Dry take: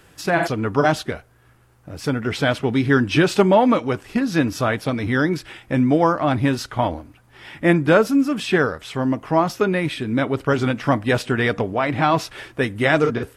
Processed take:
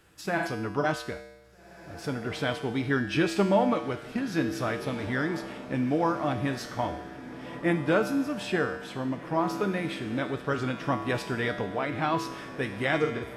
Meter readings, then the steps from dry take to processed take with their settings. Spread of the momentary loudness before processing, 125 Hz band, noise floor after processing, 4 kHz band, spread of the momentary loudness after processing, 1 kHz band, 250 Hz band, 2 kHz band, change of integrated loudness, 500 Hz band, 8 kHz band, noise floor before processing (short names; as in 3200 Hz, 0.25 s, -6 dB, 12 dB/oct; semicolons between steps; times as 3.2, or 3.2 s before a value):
9 LU, -10.0 dB, -49 dBFS, -8.5 dB, 9 LU, -8.5 dB, -9.0 dB, -8.5 dB, -9.0 dB, -9.5 dB, -8.5 dB, -54 dBFS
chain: resonator 66 Hz, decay 1 s, harmonics odd, mix 80%; diffused feedback echo 1.7 s, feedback 53%, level -14 dB; gain +2.5 dB